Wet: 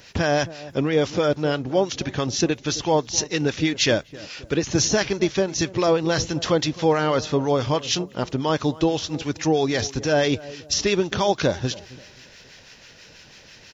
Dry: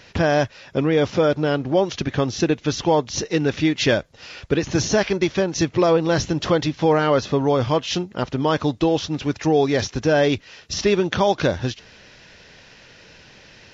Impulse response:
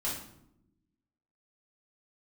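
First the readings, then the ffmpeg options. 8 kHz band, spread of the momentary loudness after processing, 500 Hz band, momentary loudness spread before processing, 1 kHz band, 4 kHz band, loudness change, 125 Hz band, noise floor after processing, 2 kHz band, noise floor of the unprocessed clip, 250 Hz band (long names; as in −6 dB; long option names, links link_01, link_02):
can't be measured, 6 LU, −2.5 dB, 6 LU, −2.5 dB, +1.5 dB, −2.0 dB, −2.5 dB, −49 dBFS, −1.5 dB, −49 dBFS, −2.5 dB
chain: -filter_complex "[0:a]aemphasis=mode=production:type=50fm,asplit=2[link_01][link_02];[link_02]adelay=265,lowpass=frequency=860:poles=1,volume=-16.5dB,asplit=2[link_03][link_04];[link_04]adelay=265,lowpass=frequency=860:poles=1,volume=0.38,asplit=2[link_05][link_06];[link_06]adelay=265,lowpass=frequency=860:poles=1,volume=0.38[link_07];[link_01][link_03][link_05][link_07]amix=inputs=4:normalize=0,acrossover=split=990[link_08][link_09];[link_08]aeval=exprs='val(0)*(1-0.5/2+0.5/2*cos(2*PI*6.1*n/s))':channel_layout=same[link_10];[link_09]aeval=exprs='val(0)*(1-0.5/2-0.5/2*cos(2*PI*6.1*n/s))':channel_layout=same[link_11];[link_10][link_11]amix=inputs=2:normalize=0"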